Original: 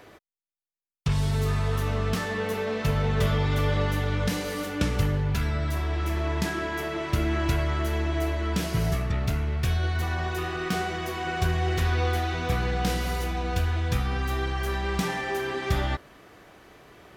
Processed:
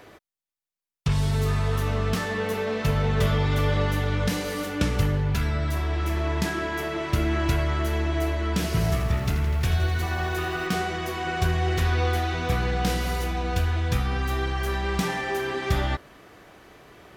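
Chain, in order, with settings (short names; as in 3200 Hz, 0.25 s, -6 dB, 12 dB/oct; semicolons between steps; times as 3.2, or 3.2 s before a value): 8.53–10.67 lo-fi delay 83 ms, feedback 80%, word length 8-bit, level -11 dB; gain +1.5 dB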